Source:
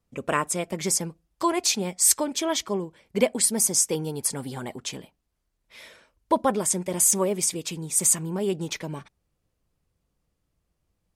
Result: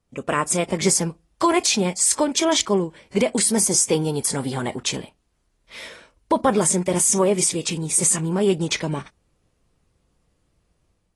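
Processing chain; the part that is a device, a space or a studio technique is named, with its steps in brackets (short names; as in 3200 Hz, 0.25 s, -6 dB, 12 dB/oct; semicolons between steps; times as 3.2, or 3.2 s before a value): low-bitrate web radio (AGC gain up to 6 dB; limiter -11 dBFS, peak gain reduction 8 dB; gain +2.5 dB; AAC 32 kbps 24000 Hz)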